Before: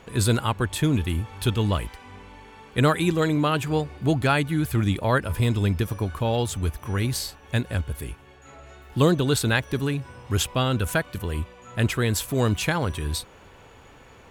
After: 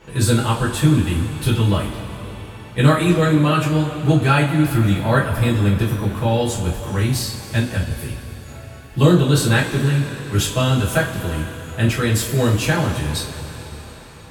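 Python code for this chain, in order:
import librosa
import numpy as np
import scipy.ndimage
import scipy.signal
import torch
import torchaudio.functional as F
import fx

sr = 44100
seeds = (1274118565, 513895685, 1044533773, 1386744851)

y = fx.rev_double_slope(x, sr, seeds[0], early_s=0.29, late_s=4.2, knee_db=-18, drr_db=-7.0)
y = y * 10.0 ** (-3.0 / 20.0)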